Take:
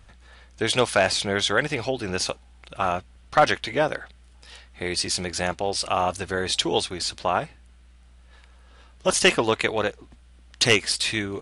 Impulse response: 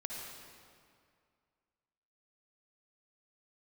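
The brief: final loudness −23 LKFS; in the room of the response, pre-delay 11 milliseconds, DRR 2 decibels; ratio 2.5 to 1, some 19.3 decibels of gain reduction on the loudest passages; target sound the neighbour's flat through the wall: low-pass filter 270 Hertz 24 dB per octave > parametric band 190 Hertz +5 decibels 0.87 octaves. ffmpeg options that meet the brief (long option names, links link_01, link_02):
-filter_complex "[0:a]acompressor=threshold=-43dB:ratio=2.5,asplit=2[link_01][link_02];[1:a]atrim=start_sample=2205,adelay=11[link_03];[link_02][link_03]afir=irnorm=-1:irlink=0,volume=-2dB[link_04];[link_01][link_04]amix=inputs=2:normalize=0,lowpass=frequency=270:width=0.5412,lowpass=frequency=270:width=1.3066,equalizer=frequency=190:width_type=o:width=0.87:gain=5,volume=23dB"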